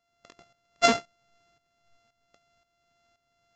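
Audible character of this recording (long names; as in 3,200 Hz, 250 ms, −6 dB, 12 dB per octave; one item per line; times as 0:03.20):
a buzz of ramps at a fixed pitch in blocks of 64 samples
tremolo saw up 1.9 Hz, depth 70%
Ogg Vorbis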